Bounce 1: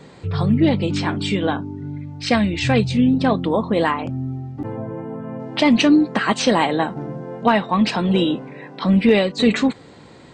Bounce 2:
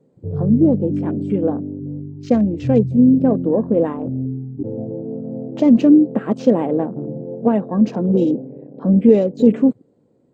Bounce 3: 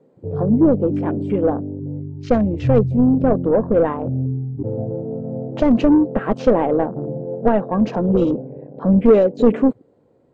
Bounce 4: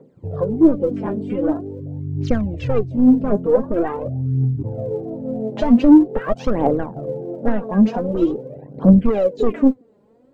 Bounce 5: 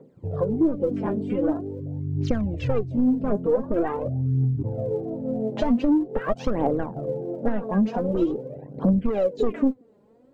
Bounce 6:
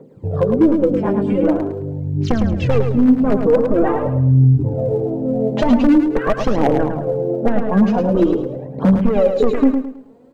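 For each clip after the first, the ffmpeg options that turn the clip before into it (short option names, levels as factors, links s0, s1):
-af "afwtdn=0.0398,equalizer=f=125:t=o:w=1:g=6,equalizer=f=250:t=o:w=1:g=9,equalizer=f=500:t=o:w=1:g=11,equalizer=f=1000:t=o:w=1:g=-5,equalizer=f=2000:t=o:w=1:g=-9,equalizer=f=4000:t=o:w=1:g=-11,volume=0.422"
-filter_complex "[0:a]asplit=2[s0][s1];[s1]highpass=f=720:p=1,volume=5.62,asoftclip=type=tanh:threshold=0.891[s2];[s0][s2]amix=inputs=2:normalize=0,lowpass=f=1500:p=1,volume=0.501,asubboost=boost=10.5:cutoff=91"
-filter_complex "[0:a]asplit=2[s0][s1];[s1]acompressor=threshold=0.0501:ratio=6,volume=1.19[s2];[s0][s2]amix=inputs=2:normalize=0,aphaser=in_gain=1:out_gain=1:delay=5:decay=0.71:speed=0.45:type=triangular,volume=0.447"
-af "acompressor=threshold=0.158:ratio=4,volume=0.794"
-filter_complex "[0:a]aeval=exprs='0.2*(abs(mod(val(0)/0.2+3,4)-2)-1)':c=same,asplit=2[s0][s1];[s1]aecho=0:1:107|214|321|428:0.501|0.165|0.0546|0.018[s2];[s0][s2]amix=inputs=2:normalize=0,volume=2.37"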